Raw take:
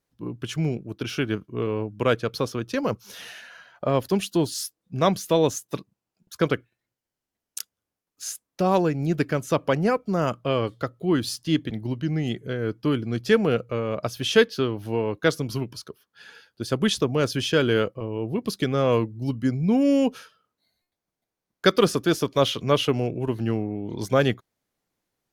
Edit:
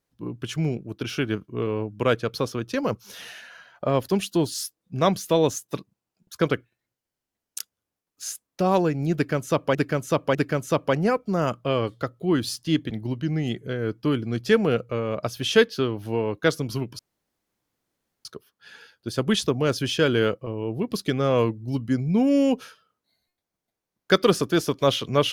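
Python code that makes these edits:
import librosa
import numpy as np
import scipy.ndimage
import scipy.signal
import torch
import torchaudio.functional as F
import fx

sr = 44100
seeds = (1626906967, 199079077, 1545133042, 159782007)

y = fx.edit(x, sr, fx.repeat(start_s=9.15, length_s=0.6, count=3),
    fx.insert_room_tone(at_s=15.79, length_s=1.26), tone=tone)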